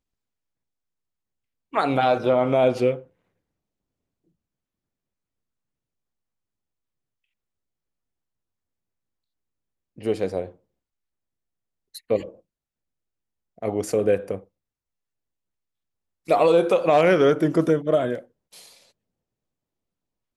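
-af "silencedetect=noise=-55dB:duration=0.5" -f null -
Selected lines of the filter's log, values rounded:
silence_start: 0.00
silence_end: 1.73 | silence_duration: 1.73
silence_start: 3.10
silence_end: 9.96 | silence_duration: 6.87
silence_start: 10.57
silence_end: 11.94 | silence_duration: 1.37
silence_start: 12.41
silence_end: 13.58 | silence_duration: 1.17
silence_start: 14.48
silence_end: 16.26 | silence_duration: 1.78
silence_start: 18.91
silence_end: 20.37 | silence_duration: 1.45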